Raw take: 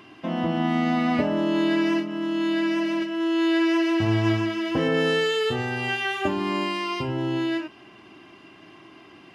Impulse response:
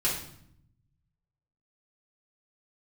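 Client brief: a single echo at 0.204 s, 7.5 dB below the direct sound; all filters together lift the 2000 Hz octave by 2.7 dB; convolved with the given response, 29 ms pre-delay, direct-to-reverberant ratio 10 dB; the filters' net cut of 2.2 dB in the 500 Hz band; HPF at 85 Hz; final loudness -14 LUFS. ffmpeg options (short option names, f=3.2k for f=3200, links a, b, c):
-filter_complex "[0:a]highpass=85,equalizer=f=500:t=o:g=-3.5,equalizer=f=2k:t=o:g=3.5,aecho=1:1:204:0.422,asplit=2[a][b];[1:a]atrim=start_sample=2205,adelay=29[c];[b][c]afir=irnorm=-1:irlink=0,volume=-19dB[d];[a][d]amix=inputs=2:normalize=0,volume=10dB"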